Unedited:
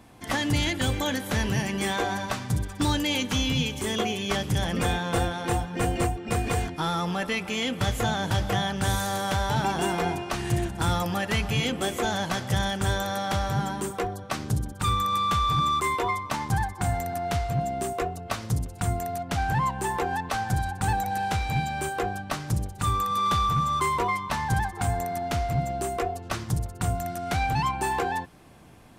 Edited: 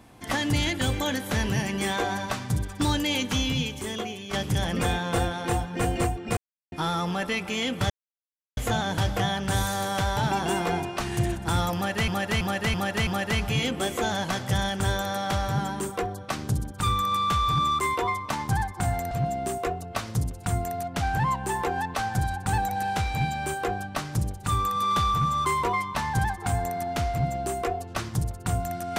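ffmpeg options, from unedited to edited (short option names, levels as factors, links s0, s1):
-filter_complex "[0:a]asplit=10[s0][s1][s2][s3][s4][s5][s6][s7][s8][s9];[s0]atrim=end=4.33,asetpts=PTS-STARTPTS,afade=t=out:st=3.36:d=0.97:silence=0.316228[s10];[s1]atrim=start=4.33:end=6.37,asetpts=PTS-STARTPTS,afade=t=in:d=0.004:c=hsin:silence=0.316228,afade=t=out:st=2.036:d=0.004:c=hsin[s11];[s2]atrim=start=6.37:end=6.72,asetpts=PTS-STARTPTS,volume=0[s12];[s3]atrim=start=6.72:end=7.9,asetpts=PTS-STARTPTS,afade=t=in:d=0.004:c=hsin,afade=t=out:st=1.176:d=0.004:c=hsin,apad=pad_dur=0.67[s13];[s4]atrim=start=7.9:end=11.412,asetpts=PTS-STARTPTS,afade=t=in:d=0.004:c=hsin[s14];[s5]atrim=start=11.078:end=11.412[s15];[s6]atrim=start=11.078:end=11.412[s16];[s7]atrim=start=11.078:end=11.412[s17];[s8]atrim=start=11.078:end=17.122[s18];[s9]atrim=start=17.458[s19];[s10][s11][s12][s13][s14]concat=n=5:v=0:a=1[s20];[s20][s15]acrossfade=d=0.004:c1=hsin:c2=hsin[s21];[s21][s16]acrossfade=d=0.004:c1=hsin:c2=hsin[s22];[s22][s17]acrossfade=d=0.004:c1=hsin:c2=hsin[s23];[s23][s18]acrossfade=d=0.004:c1=hsin:c2=hsin[s24];[s24][s19]acrossfade=d=0.004:c1=hsin:c2=hsin"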